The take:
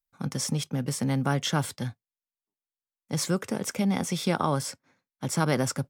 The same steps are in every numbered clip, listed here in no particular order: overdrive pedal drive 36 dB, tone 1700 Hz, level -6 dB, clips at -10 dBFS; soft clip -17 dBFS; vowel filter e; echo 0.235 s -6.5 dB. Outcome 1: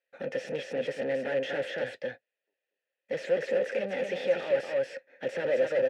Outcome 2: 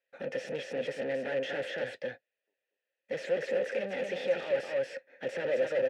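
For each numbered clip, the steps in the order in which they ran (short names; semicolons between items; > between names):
echo > soft clip > overdrive pedal > vowel filter; echo > overdrive pedal > soft clip > vowel filter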